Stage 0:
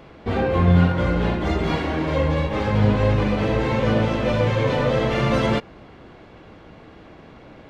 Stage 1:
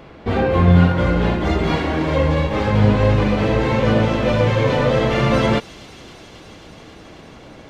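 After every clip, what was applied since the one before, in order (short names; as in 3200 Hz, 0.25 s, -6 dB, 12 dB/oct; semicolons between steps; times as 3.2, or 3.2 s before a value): thin delay 0.27 s, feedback 84%, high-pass 5100 Hz, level -9 dB; gain +3.5 dB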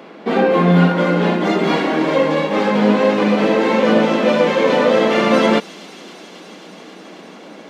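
elliptic high-pass 180 Hz, stop band 40 dB; gain +4.5 dB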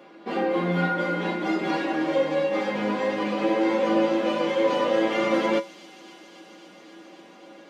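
resonator 110 Hz, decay 0.17 s, harmonics odd, mix 90%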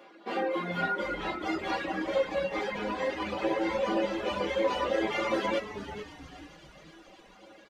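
HPF 450 Hz 6 dB/oct; reverb removal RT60 1.3 s; on a send: frequency-shifting echo 0.437 s, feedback 39%, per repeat -130 Hz, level -11 dB; on the sum: gain -1.5 dB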